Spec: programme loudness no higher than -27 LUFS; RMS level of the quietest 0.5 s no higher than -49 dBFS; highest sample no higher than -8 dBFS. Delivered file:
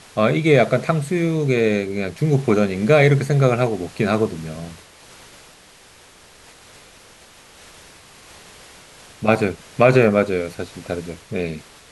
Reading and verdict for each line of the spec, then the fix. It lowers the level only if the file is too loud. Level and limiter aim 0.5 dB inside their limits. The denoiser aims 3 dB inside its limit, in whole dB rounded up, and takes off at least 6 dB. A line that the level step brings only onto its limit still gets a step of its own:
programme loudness -19.0 LUFS: fail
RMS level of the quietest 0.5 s -48 dBFS: fail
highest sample -2.0 dBFS: fail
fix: gain -8.5 dB

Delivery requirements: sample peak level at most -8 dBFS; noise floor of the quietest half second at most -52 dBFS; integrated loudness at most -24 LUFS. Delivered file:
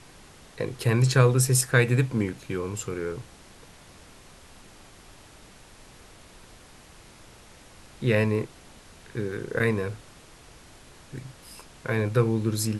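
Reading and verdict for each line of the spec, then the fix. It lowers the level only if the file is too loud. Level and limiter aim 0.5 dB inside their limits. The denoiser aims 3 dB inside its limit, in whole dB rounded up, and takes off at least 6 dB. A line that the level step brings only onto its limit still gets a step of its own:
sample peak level -5.0 dBFS: fail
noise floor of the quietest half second -50 dBFS: fail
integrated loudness -25.5 LUFS: OK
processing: denoiser 6 dB, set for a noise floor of -50 dBFS; limiter -8.5 dBFS

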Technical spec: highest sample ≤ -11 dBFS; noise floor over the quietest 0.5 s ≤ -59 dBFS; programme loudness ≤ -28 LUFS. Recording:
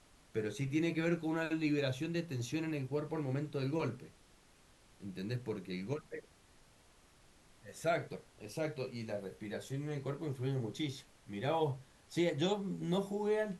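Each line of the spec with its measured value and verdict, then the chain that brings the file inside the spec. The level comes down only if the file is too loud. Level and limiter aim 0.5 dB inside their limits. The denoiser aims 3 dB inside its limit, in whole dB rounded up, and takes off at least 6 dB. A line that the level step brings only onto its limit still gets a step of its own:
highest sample -20.5 dBFS: OK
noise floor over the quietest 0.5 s -65 dBFS: OK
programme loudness -38.0 LUFS: OK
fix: none

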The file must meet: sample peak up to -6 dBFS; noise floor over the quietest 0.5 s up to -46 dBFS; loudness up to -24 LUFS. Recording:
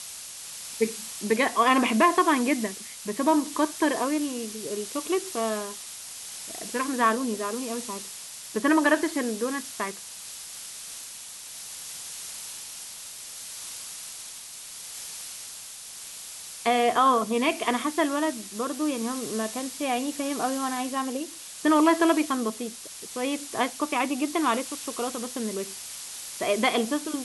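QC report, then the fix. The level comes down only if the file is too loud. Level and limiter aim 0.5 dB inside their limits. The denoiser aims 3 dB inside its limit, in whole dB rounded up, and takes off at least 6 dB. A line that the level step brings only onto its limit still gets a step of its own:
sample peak -9.0 dBFS: OK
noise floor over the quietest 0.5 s -41 dBFS: fail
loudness -27.5 LUFS: OK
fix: denoiser 8 dB, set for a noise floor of -41 dBFS

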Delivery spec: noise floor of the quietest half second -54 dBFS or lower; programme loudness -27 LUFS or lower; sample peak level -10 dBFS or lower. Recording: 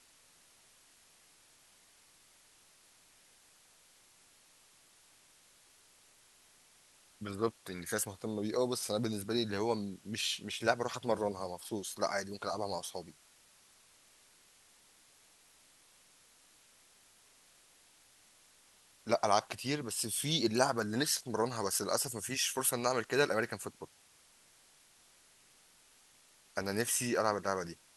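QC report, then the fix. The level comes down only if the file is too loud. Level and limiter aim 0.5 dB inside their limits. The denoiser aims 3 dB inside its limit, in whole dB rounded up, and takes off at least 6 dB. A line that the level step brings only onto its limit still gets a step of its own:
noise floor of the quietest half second -64 dBFS: OK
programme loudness -34.0 LUFS: OK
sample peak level -12.5 dBFS: OK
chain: none

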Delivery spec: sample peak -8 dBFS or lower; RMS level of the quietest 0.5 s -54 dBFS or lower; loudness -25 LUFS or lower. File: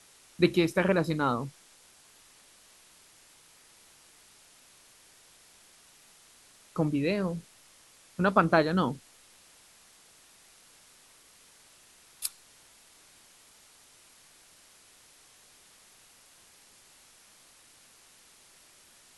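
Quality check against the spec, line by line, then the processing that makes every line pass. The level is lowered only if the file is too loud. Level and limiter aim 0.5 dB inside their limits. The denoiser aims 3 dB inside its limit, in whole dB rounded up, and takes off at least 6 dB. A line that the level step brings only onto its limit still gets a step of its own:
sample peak -7.5 dBFS: fail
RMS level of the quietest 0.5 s -58 dBFS: OK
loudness -28.0 LUFS: OK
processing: limiter -8.5 dBFS

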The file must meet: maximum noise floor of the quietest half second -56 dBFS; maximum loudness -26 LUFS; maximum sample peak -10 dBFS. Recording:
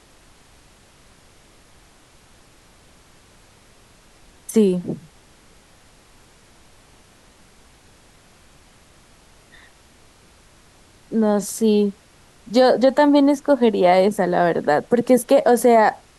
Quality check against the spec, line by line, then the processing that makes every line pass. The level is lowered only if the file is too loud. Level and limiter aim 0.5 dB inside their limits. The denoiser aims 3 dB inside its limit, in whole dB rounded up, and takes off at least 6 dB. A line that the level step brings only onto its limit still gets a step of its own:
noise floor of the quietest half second -51 dBFS: fail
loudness -17.5 LUFS: fail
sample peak -5.5 dBFS: fail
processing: gain -9 dB

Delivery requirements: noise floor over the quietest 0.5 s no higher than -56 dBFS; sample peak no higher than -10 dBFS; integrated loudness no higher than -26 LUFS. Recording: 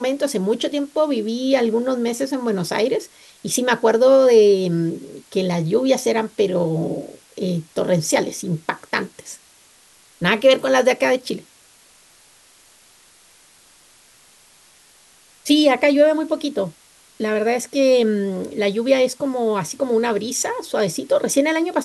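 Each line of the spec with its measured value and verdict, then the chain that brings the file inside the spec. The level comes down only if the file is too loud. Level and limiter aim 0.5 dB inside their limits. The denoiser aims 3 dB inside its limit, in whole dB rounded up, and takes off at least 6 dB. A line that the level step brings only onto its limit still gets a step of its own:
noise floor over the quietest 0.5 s -52 dBFS: fail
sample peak -3.5 dBFS: fail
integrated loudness -19.0 LUFS: fail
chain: gain -7.5 dB

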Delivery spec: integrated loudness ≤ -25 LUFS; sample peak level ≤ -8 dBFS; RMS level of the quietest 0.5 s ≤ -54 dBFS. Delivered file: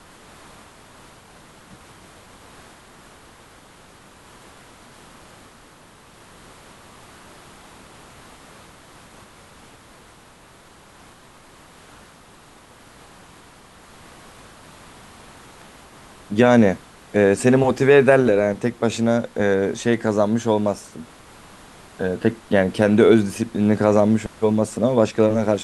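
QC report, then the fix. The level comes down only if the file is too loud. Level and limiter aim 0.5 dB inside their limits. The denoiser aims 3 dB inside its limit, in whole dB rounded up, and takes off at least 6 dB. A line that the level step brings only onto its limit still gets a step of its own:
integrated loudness -18.5 LUFS: fail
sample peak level -2.5 dBFS: fail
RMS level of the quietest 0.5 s -48 dBFS: fail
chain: gain -7 dB

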